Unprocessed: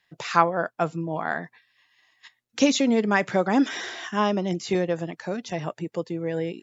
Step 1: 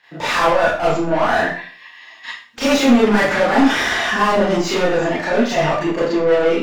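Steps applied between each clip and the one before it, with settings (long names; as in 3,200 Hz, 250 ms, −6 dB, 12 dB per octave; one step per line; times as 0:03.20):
mid-hump overdrive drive 36 dB, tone 1,600 Hz, clips at −3.5 dBFS
four-comb reverb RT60 0.44 s, combs from 26 ms, DRR −9.5 dB
level −12.5 dB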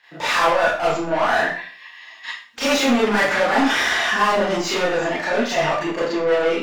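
low-shelf EQ 440 Hz −8.5 dB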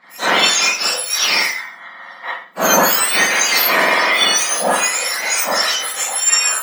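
frequency axis turned over on the octave scale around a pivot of 1,900 Hz
level +8 dB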